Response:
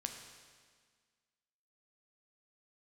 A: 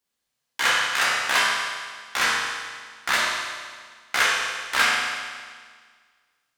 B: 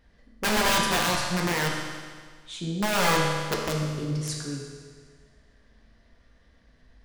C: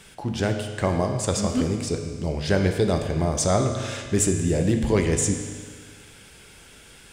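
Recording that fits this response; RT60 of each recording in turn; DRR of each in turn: C; 1.7 s, 1.7 s, 1.7 s; -6.0 dB, -2.0 dB, 4.0 dB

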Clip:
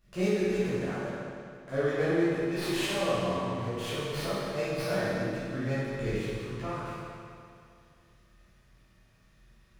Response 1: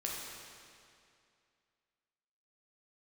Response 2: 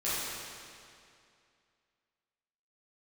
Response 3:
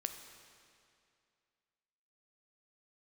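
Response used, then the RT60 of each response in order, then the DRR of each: 2; 2.4 s, 2.4 s, 2.4 s; -3.5 dB, -12.0 dB, 6.0 dB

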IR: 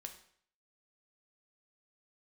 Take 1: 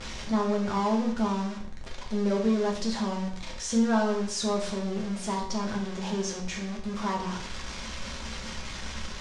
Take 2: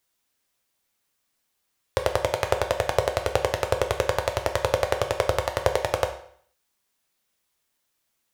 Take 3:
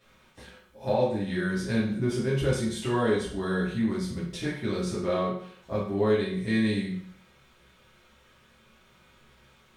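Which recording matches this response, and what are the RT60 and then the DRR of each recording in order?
2; 0.60 s, 0.60 s, 0.60 s; -2.0 dB, 4.5 dB, -9.0 dB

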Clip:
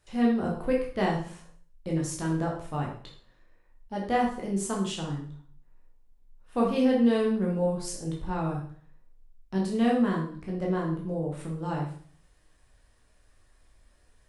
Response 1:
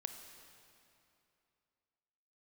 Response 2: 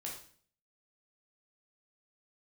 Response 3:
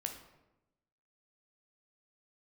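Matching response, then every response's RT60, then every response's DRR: 2; 2.8 s, 0.50 s, 0.95 s; 6.0 dB, -2.5 dB, 3.5 dB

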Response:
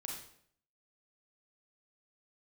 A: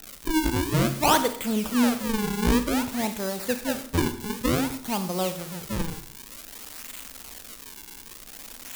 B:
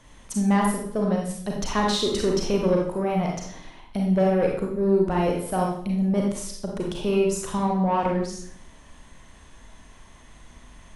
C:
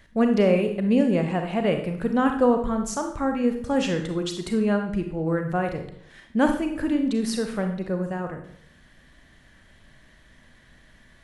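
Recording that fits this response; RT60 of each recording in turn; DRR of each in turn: B; 0.65 s, 0.65 s, 0.65 s; 9.5 dB, -1.0 dB, 5.0 dB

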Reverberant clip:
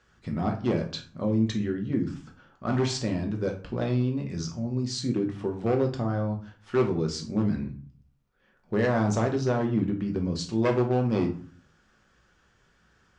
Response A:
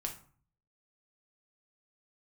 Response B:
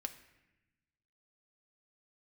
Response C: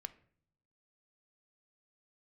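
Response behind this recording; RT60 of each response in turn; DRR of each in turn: A; 0.45 s, 0.95 s, no single decay rate; 1.5 dB, 6.0 dB, 11.5 dB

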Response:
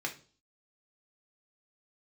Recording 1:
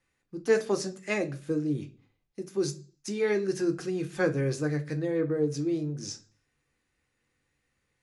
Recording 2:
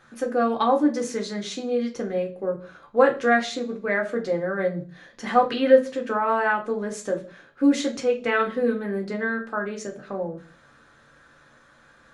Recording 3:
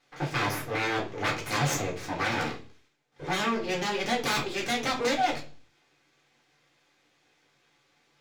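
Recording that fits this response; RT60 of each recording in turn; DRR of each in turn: 2; 0.40 s, 0.40 s, 0.40 s; 6.5 dB, 1.0 dB, -3.5 dB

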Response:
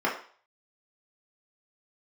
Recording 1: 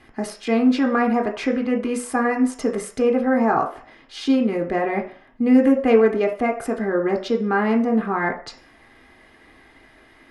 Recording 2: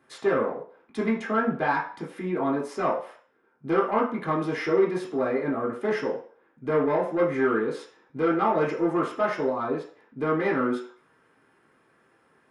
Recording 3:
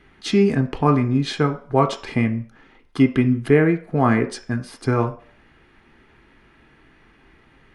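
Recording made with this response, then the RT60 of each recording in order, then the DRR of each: 2; 0.45 s, 0.45 s, 0.45 s; 2.0 dB, -5.0 dB, 6.0 dB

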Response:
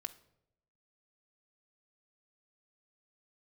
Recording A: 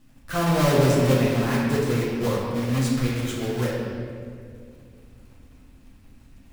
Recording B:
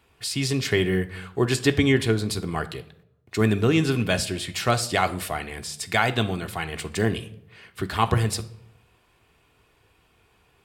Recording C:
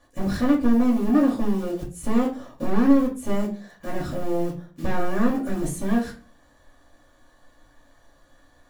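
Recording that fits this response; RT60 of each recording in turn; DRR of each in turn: B; 2.2 s, 0.80 s, 0.40 s; -6.5 dB, 6.5 dB, -3.0 dB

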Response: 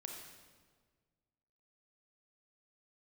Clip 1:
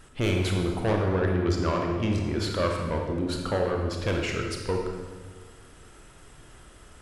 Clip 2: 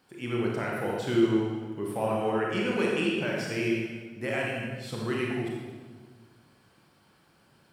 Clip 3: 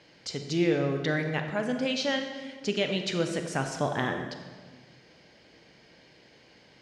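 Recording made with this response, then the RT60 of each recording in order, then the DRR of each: 1; 1.6 s, 1.6 s, 1.6 s; 1.0 dB, -3.5 dB, 5.0 dB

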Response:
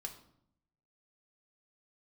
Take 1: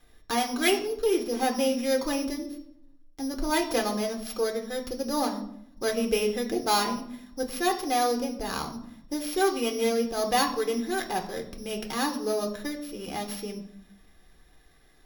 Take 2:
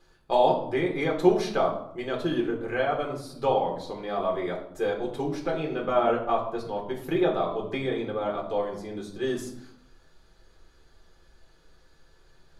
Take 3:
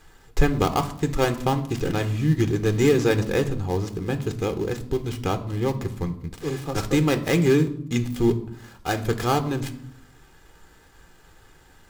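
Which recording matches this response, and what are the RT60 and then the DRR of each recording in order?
1; 0.70 s, 0.70 s, 0.70 s; 3.5 dB, -1.5 dB, 8.0 dB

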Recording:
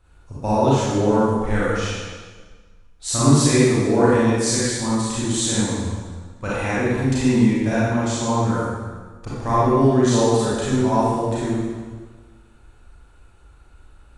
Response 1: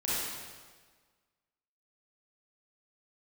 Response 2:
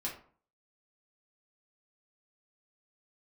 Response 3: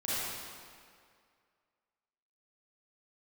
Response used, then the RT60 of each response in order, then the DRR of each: 1; 1.5 s, 0.45 s, 2.2 s; -9.5 dB, -4.0 dB, -11.0 dB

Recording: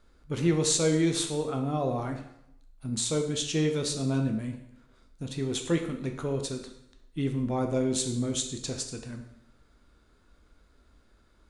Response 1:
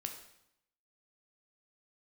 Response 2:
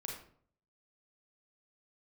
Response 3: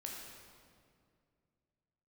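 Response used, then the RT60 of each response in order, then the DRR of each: 1; 0.80 s, 0.55 s, 2.2 s; 3.5 dB, -1.0 dB, -2.0 dB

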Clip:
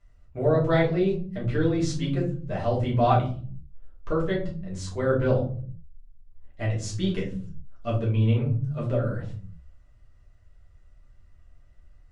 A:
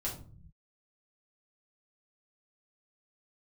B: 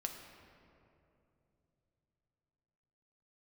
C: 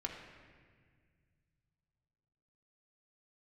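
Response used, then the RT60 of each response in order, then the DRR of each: A; 0.45 s, 2.9 s, 1.8 s; -5.5 dB, 2.5 dB, -1.0 dB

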